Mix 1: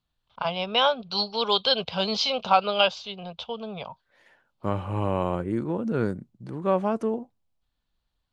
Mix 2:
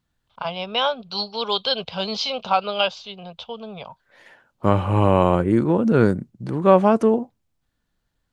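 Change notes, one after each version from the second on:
second voice +9.5 dB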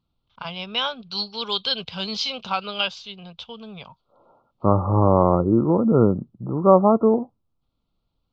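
first voice: add peaking EQ 640 Hz -10 dB 1.3 oct; second voice: add brick-wall FIR low-pass 1.4 kHz

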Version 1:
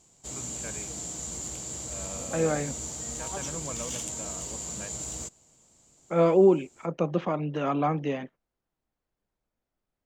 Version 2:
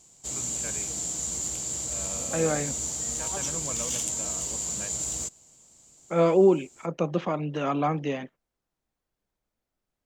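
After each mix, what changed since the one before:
master: add treble shelf 3.5 kHz +7 dB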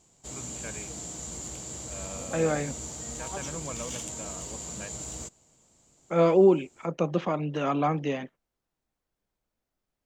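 background: add treble shelf 4 kHz -11 dB

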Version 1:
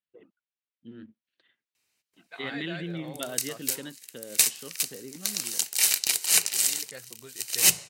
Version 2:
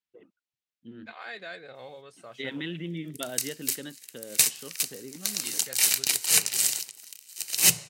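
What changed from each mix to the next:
second voice: entry -1.25 s; background: add peaking EQ 140 Hz +8 dB 0.7 oct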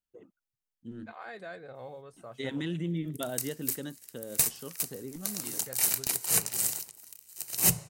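first voice: remove distance through air 320 m; master: remove frequency weighting D

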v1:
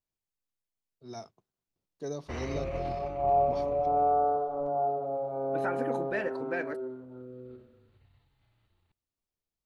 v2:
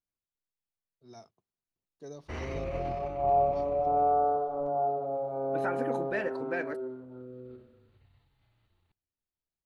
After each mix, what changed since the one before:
first voice -8.0 dB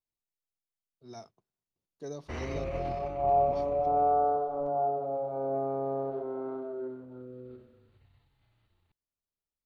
first voice +4.5 dB; second voice: muted

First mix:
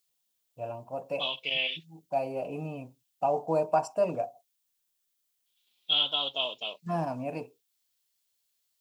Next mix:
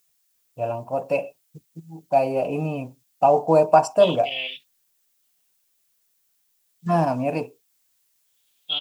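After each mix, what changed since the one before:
first voice +10.5 dB; second voice: entry +2.80 s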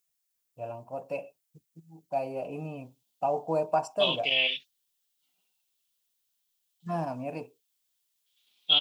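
first voice -11.5 dB; second voice +4.0 dB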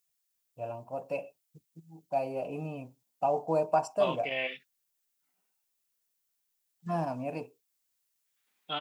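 second voice: add resonant high shelf 2.4 kHz -10.5 dB, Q 3

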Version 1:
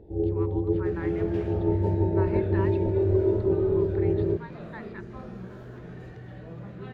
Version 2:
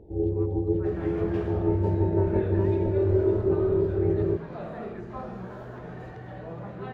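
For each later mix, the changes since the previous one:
speech -9.0 dB; second sound: add peaking EQ 810 Hz +10 dB 1.6 oct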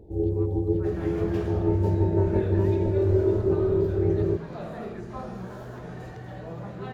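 master: add tone controls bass +2 dB, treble +12 dB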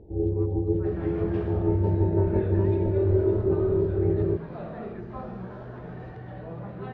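master: add distance through air 300 m

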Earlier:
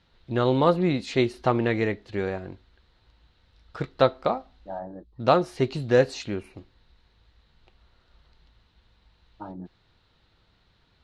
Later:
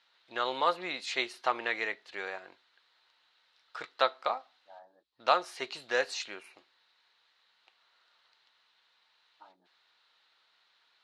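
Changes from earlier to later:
second voice -10.5 dB; master: add high-pass 990 Hz 12 dB/octave

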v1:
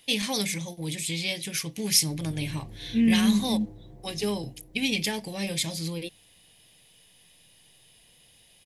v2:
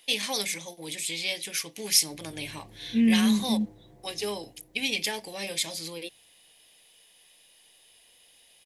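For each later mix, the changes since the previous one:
first voice: add high-pass 380 Hz 12 dB/octave; background: add tilt EQ +2.5 dB/octave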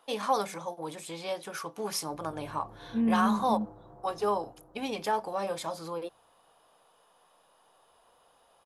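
second voice -5.5 dB; master: add FFT filter 320 Hz 0 dB, 1.3 kHz +15 dB, 2 kHz -13 dB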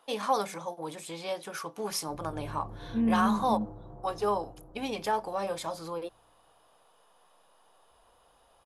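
background: add tilt EQ -2.5 dB/octave

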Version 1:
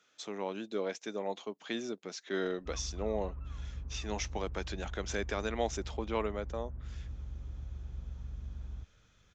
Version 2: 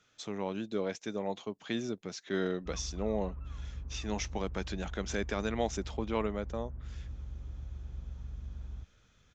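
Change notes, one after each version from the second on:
speech: remove high-pass 270 Hz 12 dB/octave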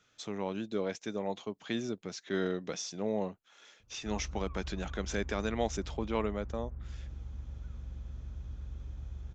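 background: entry +1.40 s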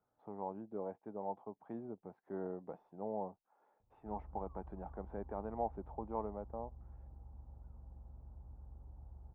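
master: add four-pole ladder low-pass 940 Hz, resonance 65%

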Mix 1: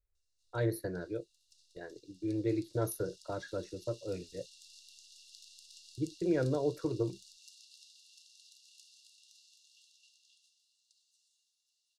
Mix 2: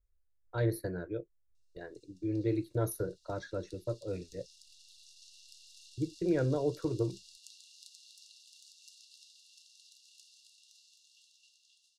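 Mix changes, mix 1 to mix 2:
speech: add bass shelf 88 Hz +8 dB; background: entry +1.40 s

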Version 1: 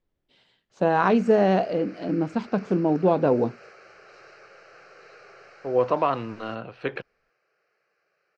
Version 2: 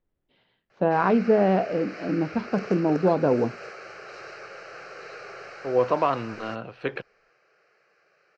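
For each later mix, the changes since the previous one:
first voice: add distance through air 310 m; background +8.5 dB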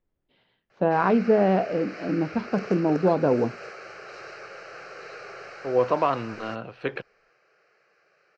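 no change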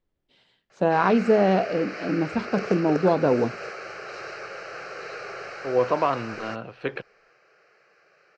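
first voice: remove distance through air 310 m; background +4.5 dB

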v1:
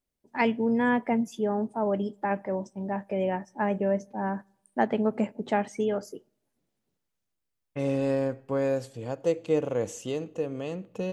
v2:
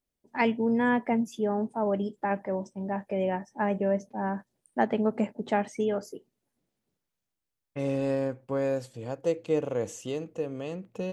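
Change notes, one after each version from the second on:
reverb: off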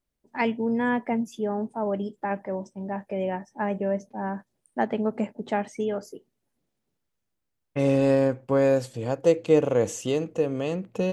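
second voice +7.5 dB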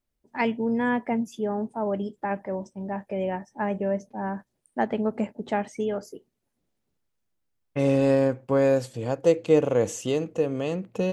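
first voice: remove high-pass 94 Hz

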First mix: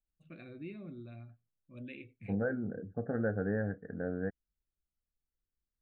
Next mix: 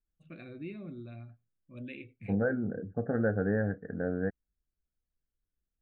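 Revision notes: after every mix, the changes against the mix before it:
first voice +3.0 dB; second voice +4.0 dB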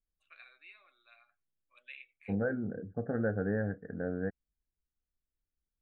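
first voice: add high-pass 1 kHz 24 dB/octave; second voice -3.0 dB

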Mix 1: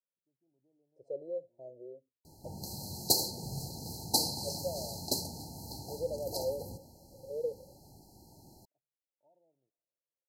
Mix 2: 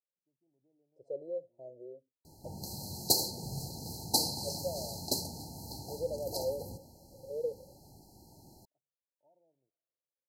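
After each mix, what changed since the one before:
no change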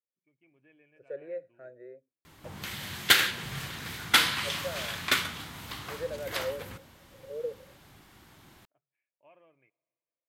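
first voice +10.0 dB; master: remove brick-wall FIR band-stop 940–4000 Hz

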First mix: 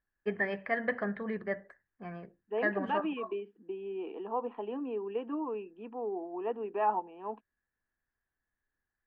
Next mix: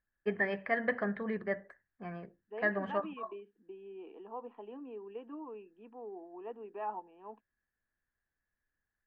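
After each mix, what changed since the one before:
second voice -9.5 dB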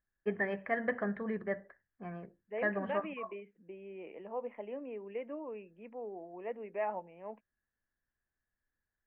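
second voice: remove static phaser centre 570 Hz, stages 6; master: add distance through air 320 m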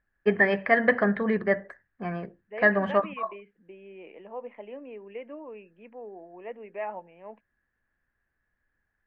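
first voice +10.5 dB; master: remove distance through air 320 m

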